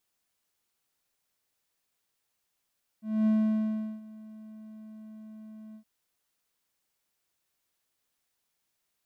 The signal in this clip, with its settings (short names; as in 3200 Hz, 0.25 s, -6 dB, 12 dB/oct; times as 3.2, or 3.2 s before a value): ADSR triangle 217 Hz, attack 0.243 s, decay 0.741 s, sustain -23 dB, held 2.73 s, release 87 ms -18.5 dBFS